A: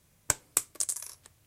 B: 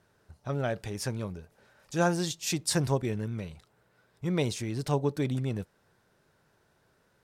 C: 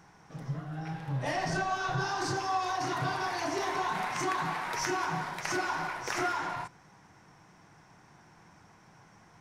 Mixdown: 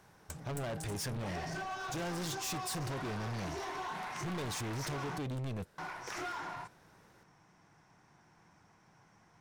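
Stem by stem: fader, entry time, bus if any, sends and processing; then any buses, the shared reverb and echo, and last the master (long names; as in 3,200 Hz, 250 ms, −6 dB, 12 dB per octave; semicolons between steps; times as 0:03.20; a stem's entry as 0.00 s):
−6.5 dB, 0.00 s, no send, automatic ducking −8 dB, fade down 0.30 s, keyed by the second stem
+3.0 dB, 0.00 s, no send, downward compressor, threshold −30 dBFS, peak gain reduction 9 dB
−7.0 dB, 0.00 s, muted 0:05.18–0:05.78, no send, no processing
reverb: not used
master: hard clipping −36 dBFS, distortion −5 dB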